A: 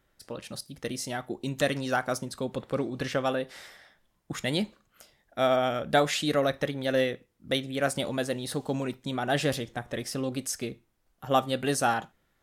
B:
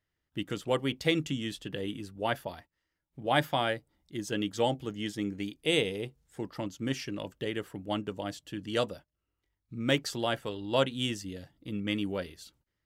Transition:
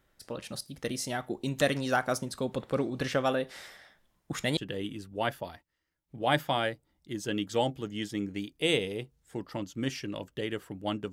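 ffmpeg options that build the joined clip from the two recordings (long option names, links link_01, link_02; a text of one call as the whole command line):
ffmpeg -i cue0.wav -i cue1.wav -filter_complex "[0:a]apad=whole_dur=11.12,atrim=end=11.12,atrim=end=4.572[link_01];[1:a]atrim=start=1.608:end=8.16[link_02];[link_01][link_02]acrossfade=duration=0.004:curve1=hsin:curve2=hsin" out.wav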